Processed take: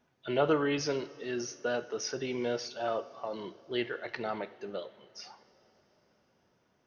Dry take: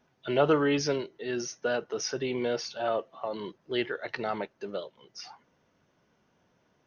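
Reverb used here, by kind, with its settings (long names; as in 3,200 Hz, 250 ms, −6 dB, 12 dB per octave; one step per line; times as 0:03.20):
coupled-rooms reverb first 0.52 s, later 4.6 s, from −17 dB, DRR 11 dB
level −3.5 dB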